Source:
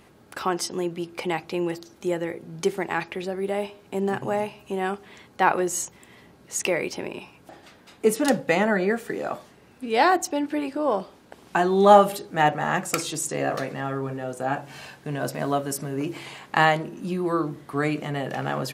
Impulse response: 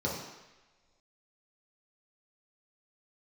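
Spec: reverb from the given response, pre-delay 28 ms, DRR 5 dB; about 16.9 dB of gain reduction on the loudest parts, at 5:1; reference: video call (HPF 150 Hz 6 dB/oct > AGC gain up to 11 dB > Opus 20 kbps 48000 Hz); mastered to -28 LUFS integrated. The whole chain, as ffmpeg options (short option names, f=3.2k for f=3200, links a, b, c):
-filter_complex "[0:a]acompressor=threshold=-28dB:ratio=5,asplit=2[a][b];[1:a]atrim=start_sample=2205,adelay=28[c];[b][c]afir=irnorm=-1:irlink=0,volume=-12.5dB[d];[a][d]amix=inputs=2:normalize=0,highpass=f=150:p=1,dynaudnorm=m=11dB,volume=1dB" -ar 48000 -c:a libopus -b:a 20k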